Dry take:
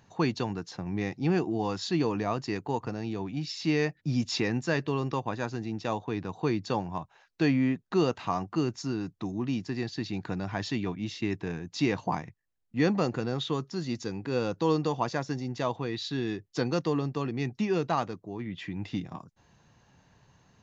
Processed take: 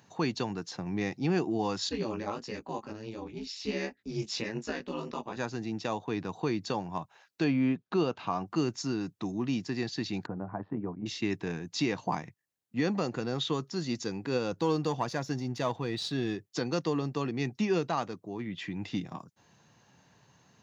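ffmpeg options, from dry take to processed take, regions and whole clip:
-filter_complex "[0:a]asettb=1/sr,asplit=3[s0][s1][s2];[s0]atrim=end=1.894[s3];[s1]atrim=start=1.89:end=5.37,asetpts=PTS-STARTPTS,afade=t=in:d=0.004:c=qsin,afade=t=out:st=3.476:d=0.004:c=qsin,flanger=delay=16:depth=4.2:speed=1.5,aeval=exprs='val(0)*sin(2*PI*110*n/s)':c=same[s4];[s2]atrim=start=5.366[s5];[s3][s4]acrossfade=d=0.004:c1=hsin:c2=qsin[s6];[s6][s5]acrossfade=d=0.004:c1=qsin:c2=hsin,asettb=1/sr,asplit=3[s7][s8][s9];[s7]atrim=end=7.444[s10];[s8]atrim=start=7.44:end=8.46,asetpts=PTS-STARTPTS,afade=t=in:d=0.004:c=qsin,afade=t=out:st=1.016:d=0.004:c=qsin,lowpass=4000,bandreject=f=1900:w=6.7[s11];[s9]atrim=start=8.456[s12];[s10][s11]acrossfade=d=0.004:c1=hsin:c2=qsin[s13];[s13][s12]acrossfade=d=0.004:c1=qsin:c2=hsin,asettb=1/sr,asplit=3[s14][s15][s16];[s14]atrim=end=10.264[s17];[s15]atrim=start=10.26:end=11.06,asetpts=PTS-STARTPTS,afade=t=in:d=0.004:c=qsin,afade=t=out:st=0.796:d=0.004:c=qsin,lowpass=f=1200:w=0.5412,lowpass=f=1200:w=1.3066,tremolo=f=86:d=0.667[s18];[s16]atrim=start=11.056[s19];[s17][s18]acrossfade=d=0.004:c1=hsin:c2=qsin[s20];[s20][s19]acrossfade=d=0.004:c1=qsin:c2=hsin,asettb=1/sr,asplit=3[s21][s22][s23];[s21]atrim=end=14.524[s24];[s22]atrim=start=14.52:end=16.36,asetpts=PTS-STARTPTS,afade=t=in:d=0.004:c=qsin,afade=t=out:st=1.836:d=0.004:c=qsin,aeval=exprs='if(lt(val(0),0),0.708*val(0),val(0))':c=same,lowshelf=f=86:g=11.5[s25];[s23]atrim=start=16.356[s26];[s24][s25]acrossfade=d=0.004:c1=hsin:c2=qsin[s27];[s27][s26]acrossfade=d=0.004:c1=qsin:c2=hsin,alimiter=limit=0.119:level=0:latency=1:release=264,highpass=120,highshelf=f=4600:g=5"

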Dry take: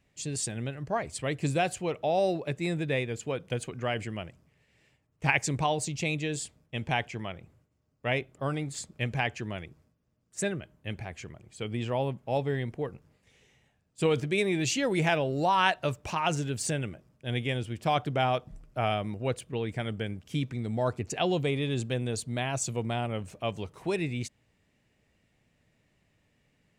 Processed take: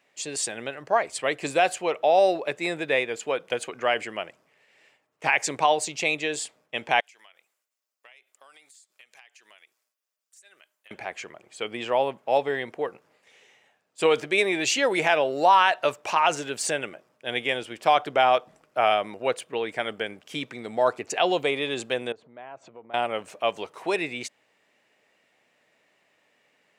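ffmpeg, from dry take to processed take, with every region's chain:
-filter_complex "[0:a]asettb=1/sr,asplit=3[s0][s1][s2];[s0]atrim=end=7.004[s3];[s1]atrim=start=7:end=10.91,asetpts=PTS-STARTPTS,afade=t=in:d=0.004:c=qsin,afade=t=out:st=3.906:d=0.004:c=qsin,aderivative,acompressor=threshold=0.00158:ratio=10:attack=3.2:release=140:knee=1:detection=peak[s4];[s2]atrim=start=10.906[s5];[s3][s4]acrossfade=d=0.004:c1=hsin:c2=qsin[s6];[s6][s5]acrossfade=d=0.004:c1=qsin:c2=hsin,asettb=1/sr,asplit=3[s7][s8][s9];[s7]atrim=end=22.124[s10];[s8]atrim=start=22.12:end=22.94,asetpts=PTS-STARTPTS,afade=t=in:d=0.004:c=qsin,afade=t=out:st=0.816:d=0.004:c=qsin,lowpass=1400,acompressor=threshold=0.00562:ratio=6:attack=3.2:release=140:knee=1:detection=peak[s11];[s9]atrim=start=22.936[s12];[s10][s11]acrossfade=d=0.004:c1=hsin:c2=qsin[s13];[s13][s12]acrossfade=d=0.004:c1=qsin:c2=hsin,highpass=540,highshelf=f=3800:g=-7,alimiter=level_in=7.08:limit=0.891:release=50:level=0:latency=1,volume=0.447"

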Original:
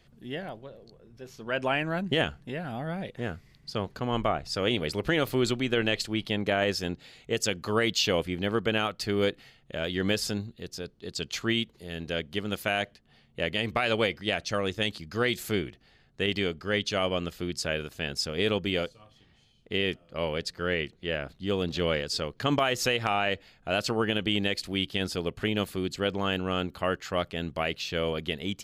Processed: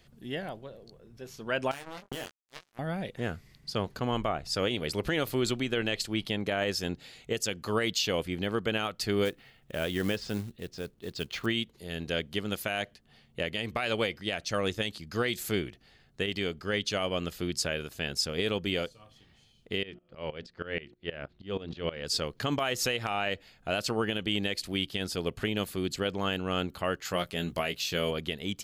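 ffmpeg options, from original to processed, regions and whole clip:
-filter_complex "[0:a]asettb=1/sr,asplit=3[s0][s1][s2];[s0]atrim=end=1.714[s3];[s1]atrim=start=1.71:end=2.79,asetpts=PTS-STARTPTS,afade=t=in:d=0.004:c=qsin,afade=t=out:st=1.076:d=0.004:c=qsin,acrusher=bits=3:mix=0:aa=0.5,acompressor=threshold=0.02:ratio=16:attack=3.2:release=140:knee=1:detection=peak,asplit=2[s4][s5];[s5]adelay=22,volume=0.501[s6];[s4][s6]amix=inputs=2:normalize=0,atrim=end_sample=47628[s7];[s2]atrim=start=2.786[s8];[s3][s7]acrossfade=d=0.004:c1=hsin:c2=qsin[s9];[s9][s8]acrossfade=d=0.004:c1=qsin:c2=hsin,asettb=1/sr,asplit=3[s10][s11][s12];[s10]atrim=end=9.254[s13];[s11]atrim=start=9.25:end=11.46,asetpts=PTS-STARTPTS,afade=t=in:d=0.004:c=qsin,afade=t=out:st=2.206:d=0.004:c=qsin,lowpass=3100,acrusher=bits=5:mode=log:mix=0:aa=0.000001[s14];[s12]atrim=start=11.456[s15];[s13][s14]acrossfade=d=0.004:c1=hsin:c2=qsin[s16];[s16][s15]acrossfade=d=0.004:c1=qsin:c2=hsin,asettb=1/sr,asplit=3[s17][s18][s19];[s17]atrim=end=19.834[s20];[s18]atrim=start=19.83:end=22.05,asetpts=PTS-STARTPTS,afade=t=in:d=0.004:c=qsin,afade=t=out:st=2.216:d=0.004:c=qsin,lowpass=3600,bandreject=f=60:t=h:w=6,bandreject=f=120:t=h:w=6,bandreject=f=180:t=h:w=6,bandreject=f=240:t=h:w=6,bandreject=f=300:t=h:w=6,bandreject=f=360:t=h:w=6,aeval=exprs='val(0)*pow(10,-19*if(lt(mod(-6.3*n/s,1),2*abs(-6.3)/1000),1-mod(-6.3*n/s,1)/(2*abs(-6.3)/1000),(mod(-6.3*n/s,1)-2*abs(-6.3)/1000)/(1-2*abs(-6.3)/1000))/20)':c=same[s21];[s19]atrim=start=22.046[s22];[s20][s21]acrossfade=d=0.004:c1=hsin:c2=qsin[s23];[s23][s22]acrossfade=d=0.004:c1=qsin:c2=hsin,asettb=1/sr,asplit=3[s24][s25][s26];[s24]atrim=end=27.054[s27];[s25]atrim=start=27.05:end=28.11,asetpts=PTS-STARTPTS,afade=t=in:d=0.004:c=qsin,afade=t=out:st=1.056:d=0.004:c=qsin,highshelf=f=7400:g=10,asplit=2[s28][s29];[s29]adelay=17,volume=0.447[s30];[s28][s30]amix=inputs=2:normalize=0,atrim=end_sample=46746[s31];[s26]atrim=start=28.106[s32];[s27][s31]acrossfade=d=0.004:c1=hsin:c2=qsin[s33];[s33][s32]acrossfade=d=0.004:c1=qsin:c2=hsin,highshelf=f=6400:g=6,alimiter=limit=0.133:level=0:latency=1:release=374"

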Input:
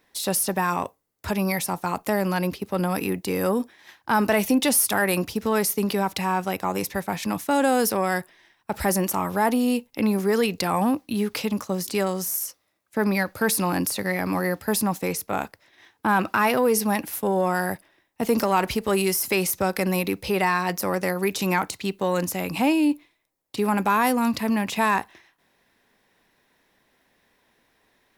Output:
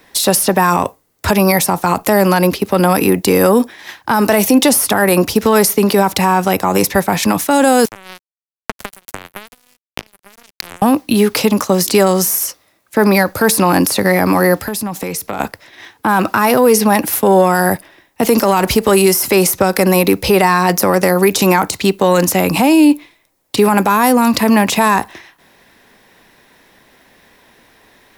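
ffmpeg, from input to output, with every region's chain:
-filter_complex "[0:a]asettb=1/sr,asplit=3[s0][s1][s2];[s0]atrim=end=7.854[s3];[s1]atrim=start=7.85:end=10.82,asetpts=PTS-STARTPTS,afade=t=in:d=0.004:c=qsin,afade=t=out:st=2.966:d=0.004:c=qsin,acompressor=threshold=0.0282:ratio=8:attack=3.2:release=140:knee=1:detection=peak,acrusher=bits=3:mix=0:aa=0.5[s4];[s2]atrim=start=10.816[s5];[s3][s4]acrossfade=d=0.004:c1=hsin:c2=qsin[s6];[s6][s5]acrossfade=d=0.004:c1=qsin:c2=hsin,asettb=1/sr,asplit=3[s7][s8][s9];[s7]atrim=end=14.574[s10];[s8]atrim=start=14.57:end=15.4,asetpts=PTS-STARTPTS,afade=t=in:d=0.004:c=qsin,afade=t=out:st=0.826:d=0.004:c=qsin,asoftclip=type=hard:threshold=0.2,acompressor=threshold=0.0178:ratio=6:attack=3.2:release=140:knee=1:detection=peak[s11];[s9]atrim=start=15.396[s12];[s10][s11]acrossfade=d=0.004:c1=hsin:c2=qsin[s13];[s13][s12]acrossfade=d=0.004:c1=qsin:c2=hsin,acrossover=split=270|1600|4200[s14][s15][s16][s17];[s14]acompressor=threshold=0.02:ratio=4[s18];[s15]acompressor=threshold=0.0631:ratio=4[s19];[s16]acompressor=threshold=0.00891:ratio=4[s20];[s17]acompressor=threshold=0.0282:ratio=4[s21];[s18][s19][s20][s21]amix=inputs=4:normalize=0,alimiter=level_in=7.5:limit=0.891:release=50:level=0:latency=1,volume=0.891"

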